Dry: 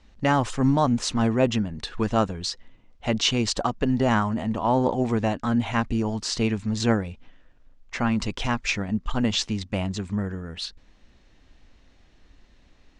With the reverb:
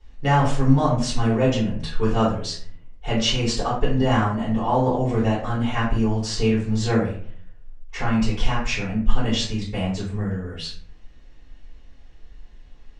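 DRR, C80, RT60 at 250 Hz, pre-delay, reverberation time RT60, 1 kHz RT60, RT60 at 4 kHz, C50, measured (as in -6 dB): -10.5 dB, 8.5 dB, 0.70 s, 3 ms, 0.55 s, 0.50 s, 0.30 s, 4.0 dB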